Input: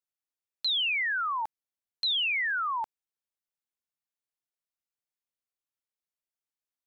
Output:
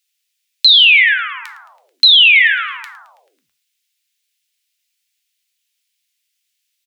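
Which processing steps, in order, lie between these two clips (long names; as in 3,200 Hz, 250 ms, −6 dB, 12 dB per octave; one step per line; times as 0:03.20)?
inverse Chebyshev high-pass filter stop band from 710 Hz, stop band 60 dB
high-shelf EQ 4,200 Hz −8.5 dB
on a send: echo with shifted repeats 109 ms, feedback 63%, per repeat −130 Hz, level −18.5 dB
on the sum: reverb whose tail is shaped and stops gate 140 ms falling, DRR 10.5 dB
flanger 0.99 Hz, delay 4.8 ms, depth 8.2 ms, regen +80%
0:02.33–0:02.77: parametric band 6,000 Hz +6.5 dB 1.1 octaves
boost into a limiter +34.5 dB
level −1 dB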